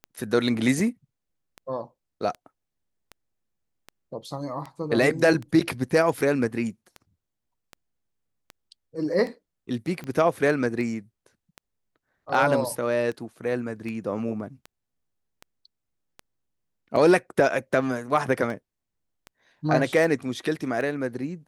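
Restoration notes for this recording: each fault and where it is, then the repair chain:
tick 78 rpm -23 dBFS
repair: de-click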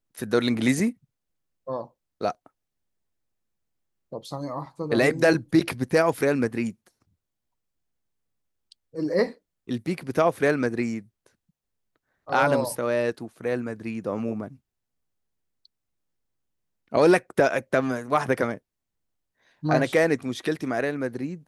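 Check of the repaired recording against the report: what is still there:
none

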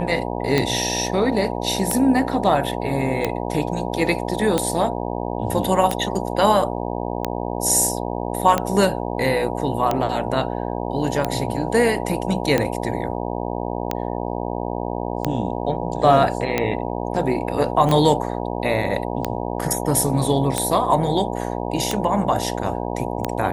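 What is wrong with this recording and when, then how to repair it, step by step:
buzz 60 Hz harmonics 16 -26 dBFS
tick 45 rpm -6 dBFS
17.89 gap 3.5 ms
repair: de-click; de-hum 60 Hz, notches 16; interpolate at 17.89, 3.5 ms

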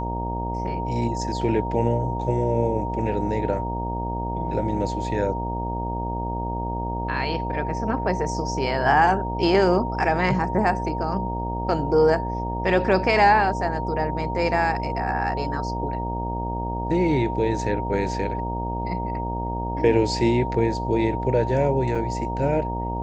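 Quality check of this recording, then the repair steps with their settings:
buzz 60 Hz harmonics 16 -29 dBFS
tone 930 Hz -29 dBFS
21.95 gap 3.7 ms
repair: notch 930 Hz, Q 30; de-hum 60 Hz, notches 16; interpolate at 21.95, 3.7 ms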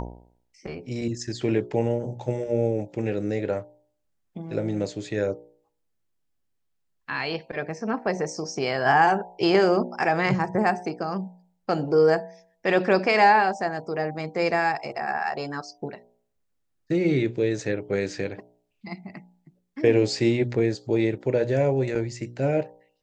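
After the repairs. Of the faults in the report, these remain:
none

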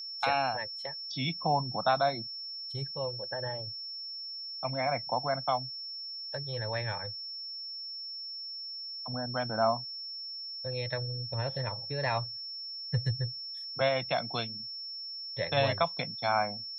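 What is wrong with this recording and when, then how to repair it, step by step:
tone 5400 Hz -38 dBFS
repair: notch 5400 Hz, Q 30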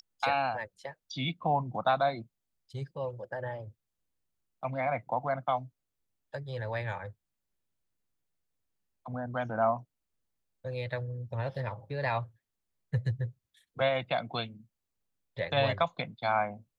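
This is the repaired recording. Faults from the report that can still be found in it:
none

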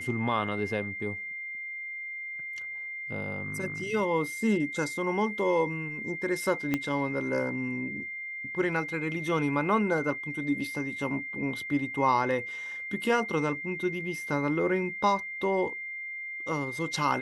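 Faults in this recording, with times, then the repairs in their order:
tone 2100 Hz -35 dBFS
6.74 pop -14 dBFS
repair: de-click; notch 2100 Hz, Q 30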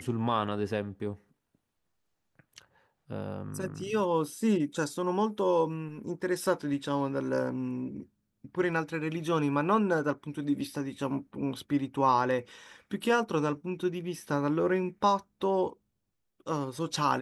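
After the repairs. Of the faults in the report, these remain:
6.74 pop

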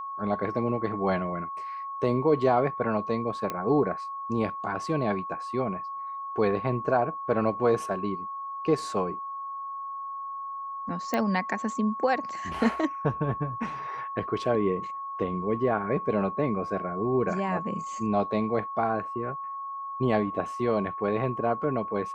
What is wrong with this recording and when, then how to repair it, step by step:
tone 1100 Hz -33 dBFS
3.5 pop -16 dBFS
11.14 pop -14 dBFS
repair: de-click; notch 1100 Hz, Q 30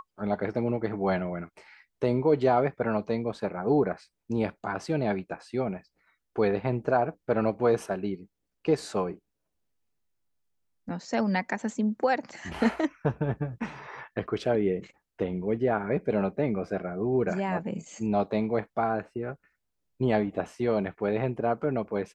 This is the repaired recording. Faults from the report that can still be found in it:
11.14 pop

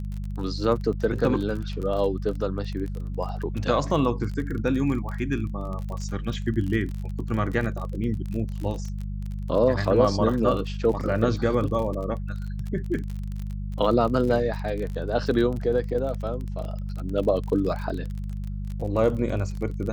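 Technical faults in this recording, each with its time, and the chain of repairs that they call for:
crackle 32/s -31 dBFS
hum 50 Hz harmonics 4 -31 dBFS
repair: de-click; de-hum 50 Hz, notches 4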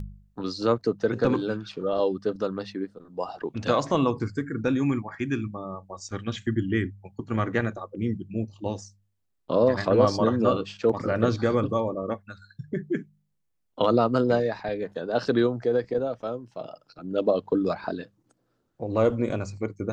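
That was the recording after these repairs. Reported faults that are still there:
none

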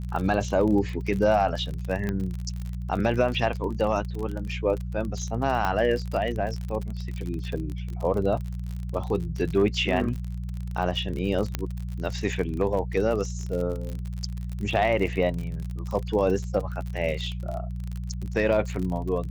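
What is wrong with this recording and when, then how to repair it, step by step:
crackle 42/s -30 dBFS
hum 60 Hz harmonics 3 -32 dBFS
2.09 pop -16 dBFS
5.65 pop -13 dBFS
11.55 pop -11 dBFS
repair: de-click; de-hum 60 Hz, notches 3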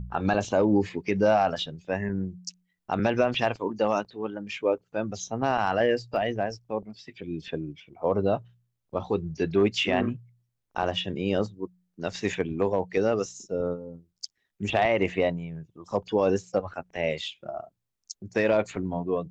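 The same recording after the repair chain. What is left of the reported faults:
none

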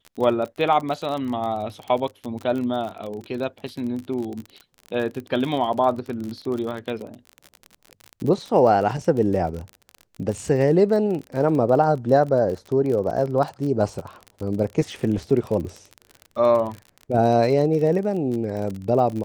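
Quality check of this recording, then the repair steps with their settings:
crackle 39/s -28 dBFS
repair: de-click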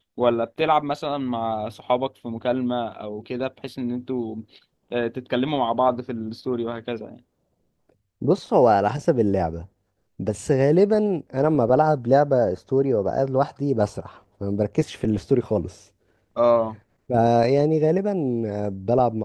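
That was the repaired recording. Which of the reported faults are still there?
none

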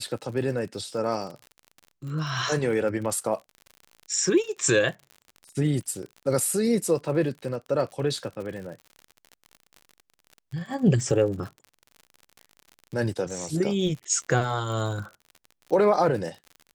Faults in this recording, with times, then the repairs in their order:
crackle 58/s -35 dBFS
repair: de-click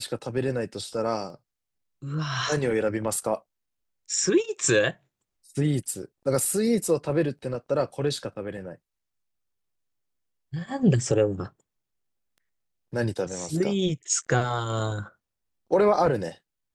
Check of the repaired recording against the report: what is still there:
none

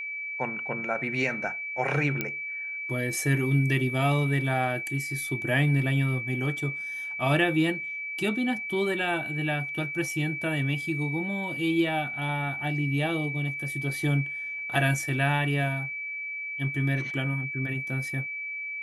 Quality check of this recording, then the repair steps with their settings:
tone 2300 Hz -32 dBFS
2.21 pop -13 dBFS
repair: de-click; notch 2300 Hz, Q 30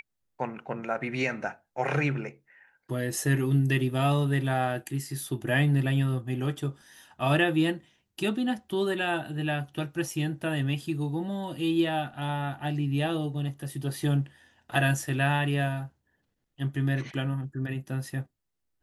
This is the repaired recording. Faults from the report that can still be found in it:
2.21 pop

